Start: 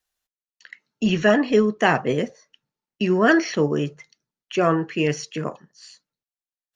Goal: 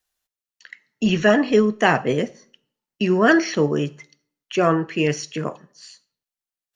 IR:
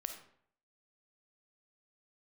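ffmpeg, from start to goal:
-filter_complex "[0:a]asplit=2[link_01][link_02];[link_02]highshelf=frequency=4300:gain=10[link_03];[1:a]atrim=start_sample=2205[link_04];[link_03][link_04]afir=irnorm=-1:irlink=0,volume=-14dB[link_05];[link_01][link_05]amix=inputs=2:normalize=0"

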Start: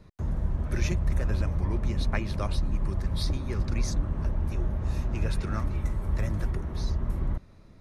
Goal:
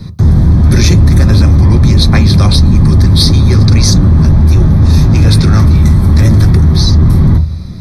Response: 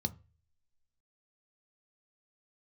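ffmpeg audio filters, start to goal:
-filter_complex "[0:a]asplit=2[link_01][link_02];[1:a]atrim=start_sample=2205,highshelf=frequency=3100:gain=11.5[link_03];[link_02][link_03]afir=irnorm=-1:irlink=0,volume=2dB[link_04];[link_01][link_04]amix=inputs=2:normalize=0,apsyclip=17.5dB,volume=-2dB"

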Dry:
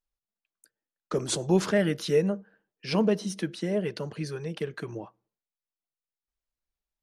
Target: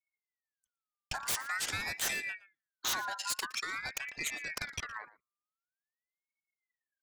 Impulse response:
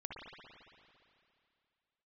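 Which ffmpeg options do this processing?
-filter_complex "[0:a]anlmdn=0.398,acrossover=split=120[link_01][link_02];[link_02]acompressor=threshold=-37dB:ratio=4[link_03];[link_01][link_03]amix=inputs=2:normalize=0,acrossover=split=120|540|2900[link_04][link_05][link_06][link_07];[link_07]aeval=exprs='0.0531*sin(PI/2*7.08*val(0)/0.0531)':channel_layout=same[link_08];[link_04][link_05][link_06][link_08]amix=inputs=4:normalize=0,asplit=2[link_09][link_10];[link_10]adelay=116.6,volume=-18dB,highshelf=frequency=4000:gain=-2.62[link_11];[link_09][link_11]amix=inputs=2:normalize=0,aeval=exprs='val(0)*sin(2*PI*1700*n/s+1700*0.3/0.47*sin(2*PI*0.47*n/s))':channel_layout=same"

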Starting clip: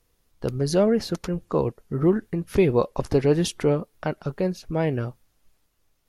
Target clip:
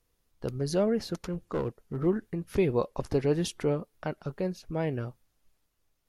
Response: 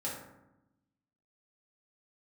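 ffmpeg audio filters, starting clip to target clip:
-filter_complex "[0:a]asplit=3[link_01][link_02][link_03];[link_01]afade=type=out:start_time=1.25:duration=0.02[link_04];[link_02]aeval=exprs='clip(val(0),-1,0.0944)':channel_layout=same,afade=type=in:start_time=1.25:duration=0.02,afade=type=out:start_time=2.05:duration=0.02[link_05];[link_03]afade=type=in:start_time=2.05:duration=0.02[link_06];[link_04][link_05][link_06]amix=inputs=3:normalize=0,volume=-6.5dB"

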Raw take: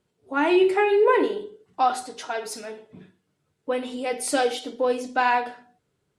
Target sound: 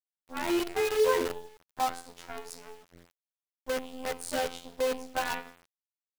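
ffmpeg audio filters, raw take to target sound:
ffmpeg -i in.wav -af "afftfilt=real='hypot(re,im)*cos(PI*b)':imag='0':win_size=2048:overlap=0.75,adynamicequalizer=threshold=0.01:dfrequency=470:dqfactor=5.3:tfrequency=470:tqfactor=5.3:attack=5:release=100:ratio=0.375:range=3:mode=boostabove:tftype=bell,acrusher=bits=5:dc=4:mix=0:aa=0.000001,volume=-6.5dB" out.wav

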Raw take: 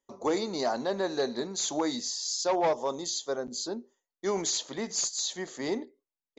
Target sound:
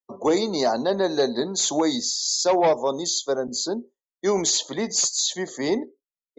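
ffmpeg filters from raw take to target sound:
ffmpeg -i in.wav -filter_complex "[0:a]acrossover=split=100|1100|1700[link_01][link_02][link_03][link_04];[link_03]acompressor=threshold=-53dB:ratio=16[link_05];[link_01][link_02][link_05][link_04]amix=inputs=4:normalize=0,afftdn=noise_reduction=26:noise_floor=-51,volume=8dB" out.wav

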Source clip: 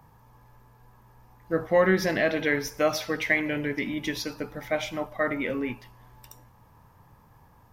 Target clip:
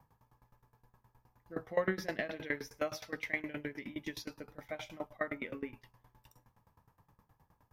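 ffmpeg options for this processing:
ffmpeg -i in.wav -af "aeval=exprs='val(0)*pow(10,-21*if(lt(mod(9.6*n/s,1),2*abs(9.6)/1000),1-mod(9.6*n/s,1)/(2*abs(9.6)/1000),(mod(9.6*n/s,1)-2*abs(9.6)/1000)/(1-2*abs(9.6)/1000))/20)':channel_layout=same,volume=-6dB" out.wav

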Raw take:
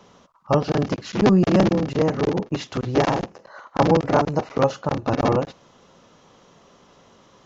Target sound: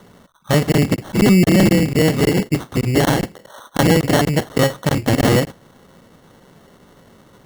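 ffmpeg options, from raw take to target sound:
ffmpeg -i in.wav -af "lowshelf=frequency=450:gain=9,acrusher=samples=18:mix=1:aa=0.000001,alimiter=level_in=5dB:limit=-1dB:release=50:level=0:latency=1,volume=-4.5dB" out.wav

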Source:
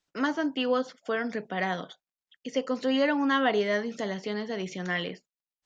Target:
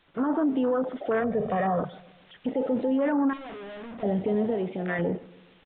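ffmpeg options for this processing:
ffmpeg -i in.wav -filter_complex "[0:a]aeval=exprs='val(0)+0.5*0.0335*sgn(val(0))':channel_layout=same,afwtdn=0.0447,asettb=1/sr,asplit=3[link_01][link_02][link_03];[link_01]atrim=end=1.204[link_04];[link_02]atrim=start=1.2:end=1.8,asetpts=PTS-STARTPTS,afade=type=in:duration=0.004:curve=qsin,afade=type=out:start_time=0.596:duration=0.004:curve=qsin,aecho=1:1:1.7:0.73,atrim=end_sample=26460[link_05];[link_03]atrim=start=1.796[link_06];[link_04][link_05]acrossfade=duration=0.004:curve1=hsin:curve2=qsin[link_07];[link_07][link_06]acrossfade=duration=0.004:curve1=qsin:curve2=hsin,asettb=1/sr,asplit=3[link_08][link_09][link_10];[link_08]atrim=end=4.544[link_11];[link_09]atrim=start=4.54:end=4.99,asetpts=PTS-STARTPTS,afade=type=in:duration=0.004:curve=qsin,afade=type=out:start_time=0.446:duration=0.004:curve=qsin,lowshelf=frequency=230:gain=-11[link_12];[link_10]atrim=start=4.986[link_13];[link_11][link_12]acrossfade=duration=0.004:curve1=hsin:curve2=qsin[link_14];[link_14][link_13]acrossfade=duration=0.004:curve1=qsin:curve2=hsin,acrossover=split=1500[link_15][link_16];[link_16]acompressor=threshold=-52dB:ratio=4[link_17];[link_15][link_17]amix=inputs=2:normalize=0,alimiter=limit=-23.5dB:level=0:latency=1:release=19,dynaudnorm=framelen=110:gausssize=3:maxgain=14dB,asettb=1/sr,asplit=3[link_18][link_19][link_20];[link_18]atrim=end=3.334[link_21];[link_19]atrim=start=3.33:end=4.03,asetpts=PTS-STARTPTS,afade=type=in:duration=0.004:curve=qsin,afade=type=out:start_time=0.696:duration=0.004:curve=qsin,asoftclip=type=hard:threshold=-30.5dB[link_22];[link_20]atrim=start=4.026[link_23];[link_21][link_22]acrossfade=duration=0.004:curve1=hsin:curve2=qsin[link_24];[link_24][link_23]acrossfade=duration=0.004:curve1=qsin:curve2=hsin,asplit=2[link_25][link_26];[link_26]adelay=138,lowpass=frequency=1100:poles=1,volume=-20dB,asplit=2[link_27][link_28];[link_28]adelay=138,lowpass=frequency=1100:poles=1,volume=0.54,asplit=2[link_29][link_30];[link_30]adelay=138,lowpass=frequency=1100:poles=1,volume=0.54,asplit=2[link_31][link_32];[link_32]adelay=138,lowpass=frequency=1100:poles=1,volume=0.54[link_33];[link_27][link_29][link_31][link_33]amix=inputs=4:normalize=0[link_34];[link_25][link_34]amix=inputs=2:normalize=0,aresample=8000,aresample=44100,volume=-9dB" out.wav

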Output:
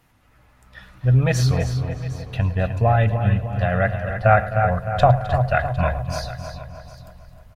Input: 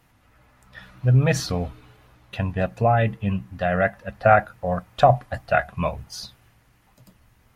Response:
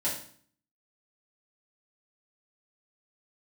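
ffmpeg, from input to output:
-filter_complex "[0:a]asplit=2[link_01][link_02];[link_02]adelay=306,lowpass=frequency=3100:poles=1,volume=-8dB,asplit=2[link_03][link_04];[link_04]adelay=306,lowpass=frequency=3100:poles=1,volume=0.52,asplit=2[link_05][link_06];[link_06]adelay=306,lowpass=frequency=3100:poles=1,volume=0.52,asplit=2[link_07][link_08];[link_08]adelay=306,lowpass=frequency=3100:poles=1,volume=0.52,asplit=2[link_09][link_10];[link_10]adelay=306,lowpass=frequency=3100:poles=1,volume=0.52,asplit=2[link_11][link_12];[link_12]adelay=306,lowpass=frequency=3100:poles=1,volume=0.52[link_13];[link_03][link_05][link_07][link_09][link_11][link_13]amix=inputs=6:normalize=0[link_14];[link_01][link_14]amix=inputs=2:normalize=0,asubboost=boost=4.5:cutoff=110,asplit=2[link_15][link_16];[link_16]aecho=0:1:108|260|314|756:0.126|0.188|0.2|0.133[link_17];[link_15][link_17]amix=inputs=2:normalize=0"

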